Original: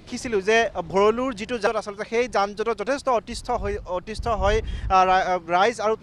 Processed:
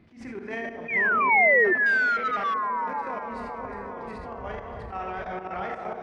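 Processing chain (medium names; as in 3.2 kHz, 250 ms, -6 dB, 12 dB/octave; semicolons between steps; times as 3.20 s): backward echo that repeats 374 ms, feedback 44%, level -4.5 dB; Schroeder reverb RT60 0.86 s, combs from 27 ms, DRR 2 dB; level held to a coarse grid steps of 19 dB; tilt shelf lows +10 dB, about 1.4 kHz; 1.20–3.02 s: painted sound fall 840–2400 Hz -19 dBFS; peak limiter -19 dBFS, peak gain reduction 17 dB; 1.86–2.54 s: waveshaping leveller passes 1; graphic EQ 500/2000/8000 Hz -7/+10/-4 dB; on a send: feedback echo behind a band-pass 266 ms, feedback 78%, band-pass 480 Hz, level -7 dB; 0.88–1.73 s: on the sum: painted sound fall 350–2500 Hz -18 dBFS; high-pass 120 Hz 6 dB/octave; attacks held to a fixed rise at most 150 dB/s; trim -4.5 dB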